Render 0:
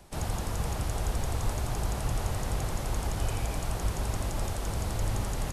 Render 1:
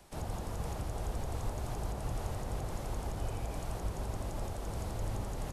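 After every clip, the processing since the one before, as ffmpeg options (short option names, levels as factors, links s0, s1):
-filter_complex "[0:a]lowshelf=f=290:g=-4.5,acrossover=split=920[s0][s1];[s1]alimiter=level_in=3.76:limit=0.0631:level=0:latency=1:release=465,volume=0.266[s2];[s0][s2]amix=inputs=2:normalize=0,volume=0.75"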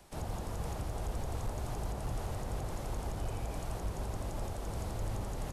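-af "volume=28.2,asoftclip=hard,volume=0.0355"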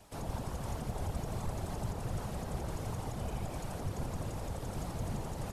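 -af "areverse,acompressor=mode=upward:threshold=0.002:ratio=2.5,areverse,afftfilt=real='hypot(re,im)*cos(2*PI*random(0))':imag='hypot(re,im)*sin(2*PI*random(1))':win_size=512:overlap=0.75,volume=2"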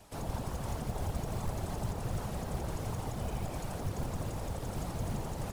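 -af "acrusher=bits=6:mode=log:mix=0:aa=0.000001,volume=1.19"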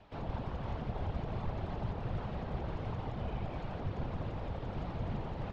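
-af "lowpass=f=3600:w=0.5412,lowpass=f=3600:w=1.3066,volume=0.841"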